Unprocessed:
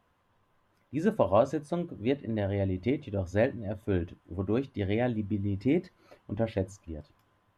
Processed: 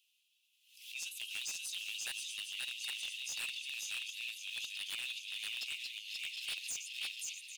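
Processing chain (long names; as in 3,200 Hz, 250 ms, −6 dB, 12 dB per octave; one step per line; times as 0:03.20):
feedback delay that plays each chunk backwards 399 ms, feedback 74%, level −9 dB
leveller curve on the samples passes 1
in parallel at −0.5 dB: brickwall limiter −22 dBFS, peak gain reduction 10.5 dB
on the sum: Chebyshev high-pass filter 2,600 Hz, order 6
on a send: single-tap delay 531 ms −3 dB
on the sum: wave folding −38 dBFS
background raised ahead of every attack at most 91 dB per second
level +5 dB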